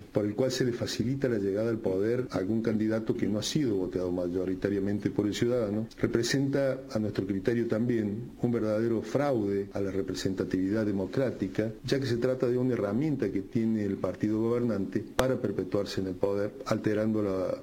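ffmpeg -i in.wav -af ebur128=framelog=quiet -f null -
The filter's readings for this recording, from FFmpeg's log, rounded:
Integrated loudness:
  I:         -29.7 LUFS
  Threshold: -39.7 LUFS
Loudness range:
  LRA:         0.8 LU
  Threshold: -49.7 LUFS
  LRA low:   -30.1 LUFS
  LRA high:  -29.3 LUFS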